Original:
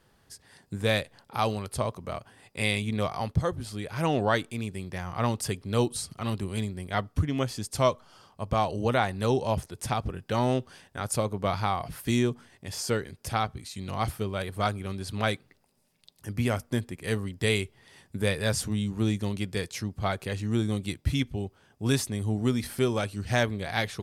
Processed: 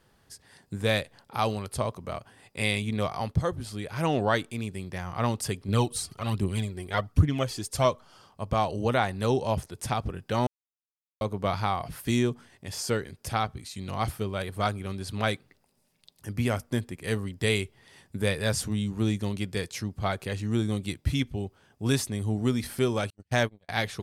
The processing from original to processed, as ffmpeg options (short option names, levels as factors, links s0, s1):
-filter_complex "[0:a]asettb=1/sr,asplit=3[s0][s1][s2];[s0]atrim=end=5.684[s3];[s1]atrim=start=5.68:end=7.85,asetpts=PTS-STARTPTS,afade=t=in:d=0.004:c=qsin,afade=t=out:st=2.166:d=0.004:c=qsin,aphaser=in_gain=1:out_gain=1:delay=3:decay=0.5:speed=1.3:type=triangular[s4];[s2]atrim=start=7.846[s5];[s3][s4]acrossfade=d=0.004:c1=hsin:c2=qsin[s6];[s6][s5]acrossfade=d=0.004:c1=qsin:c2=hsin,asettb=1/sr,asplit=3[s7][s8][s9];[s7]atrim=end=23.104[s10];[s8]atrim=start=23.1:end=23.69,asetpts=PTS-STARTPTS,afade=t=in:d=0.004:c=qsin,afade=t=out:st=0.586:d=0.004:c=qsin,agate=range=0.00562:threshold=0.0355:ratio=16:release=100:detection=peak[s11];[s9]atrim=start=23.686[s12];[s10][s11]acrossfade=d=0.004:c1=hsin:c2=qsin[s13];[s13][s12]acrossfade=d=0.004:c1=qsin:c2=hsin,asplit=3[s14][s15][s16];[s14]atrim=end=10.47,asetpts=PTS-STARTPTS,afade=t=out:st=10.466:d=0.004:c=hsin[s17];[s15]atrim=start=10.47:end=11.21,asetpts=PTS-STARTPTS,volume=0[s18];[s16]atrim=start=11.21,asetpts=PTS-STARTPTS,afade=t=in:d=0.004:c=hsin[s19];[s17][s18][s19]concat=n=3:v=0:a=1"